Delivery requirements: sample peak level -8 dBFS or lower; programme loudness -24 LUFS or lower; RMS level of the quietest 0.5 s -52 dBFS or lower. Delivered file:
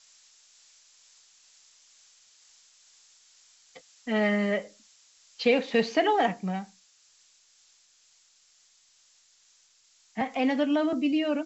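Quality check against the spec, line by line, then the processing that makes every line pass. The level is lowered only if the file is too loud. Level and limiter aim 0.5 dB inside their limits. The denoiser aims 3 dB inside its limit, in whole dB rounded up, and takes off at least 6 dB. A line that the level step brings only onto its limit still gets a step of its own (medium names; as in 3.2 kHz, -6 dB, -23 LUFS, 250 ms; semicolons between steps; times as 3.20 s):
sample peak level -10.5 dBFS: pass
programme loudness -27.0 LUFS: pass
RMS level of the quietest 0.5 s -63 dBFS: pass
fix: none needed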